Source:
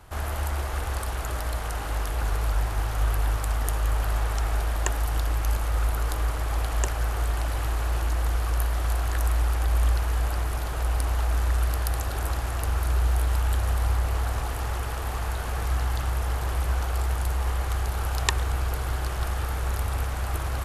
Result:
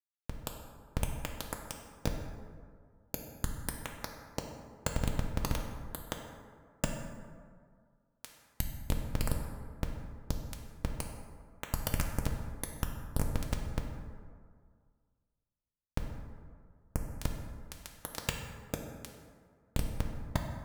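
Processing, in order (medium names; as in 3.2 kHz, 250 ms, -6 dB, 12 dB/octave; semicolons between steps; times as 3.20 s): tilt EQ +3.5 dB/octave; Schmitt trigger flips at -13.5 dBFS; comb of notches 370 Hz; plate-style reverb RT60 1.9 s, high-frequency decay 0.45×, DRR 2.5 dB; trim +8.5 dB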